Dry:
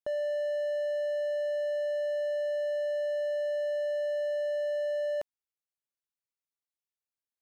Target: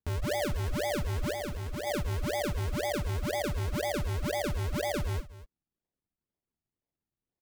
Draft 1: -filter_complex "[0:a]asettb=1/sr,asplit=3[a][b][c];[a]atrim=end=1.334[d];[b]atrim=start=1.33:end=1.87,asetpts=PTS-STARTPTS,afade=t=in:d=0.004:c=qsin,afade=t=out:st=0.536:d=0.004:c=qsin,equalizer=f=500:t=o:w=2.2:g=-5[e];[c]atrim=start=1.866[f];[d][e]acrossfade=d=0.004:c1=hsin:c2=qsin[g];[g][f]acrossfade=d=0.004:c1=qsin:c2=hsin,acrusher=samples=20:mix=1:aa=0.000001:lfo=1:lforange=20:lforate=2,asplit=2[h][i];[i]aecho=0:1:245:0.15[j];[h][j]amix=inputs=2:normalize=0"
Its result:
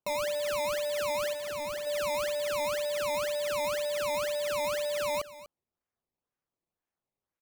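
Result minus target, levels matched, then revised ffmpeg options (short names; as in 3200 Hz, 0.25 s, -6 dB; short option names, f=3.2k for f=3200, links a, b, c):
decimation with a swept rate: distortion -28 dB
-filter_complex "[0:a]asettb=1/sr,asplit=3[a][b][c];[a]atrim=end=1.334[d];[b]atrim=start=1.33:end=1.87,asetpts=PTS-STARTPTS,afade=t=in:d=0.004:c=qsin,afade=t=out:st=0.536:d=0.004:c=qsin,equalizer=f=500:t=o:w=2.2:g=-5[e];[c]atrim=start=1.866[f];[d][e]acrossfade=d=0.004:c1=hsin:c2=qsin[g];[g][f]acrossfade=d=0.004:c1=qsin:c2=hsin,acrusher=samples=61:mix=1:aa=0.000001:lfo=1:lforange=61:lforate=2,asplit=2[h][i];[i]aecho=0:1:245:0.15[j];[h][j]amix=inputs=2:normalize=0"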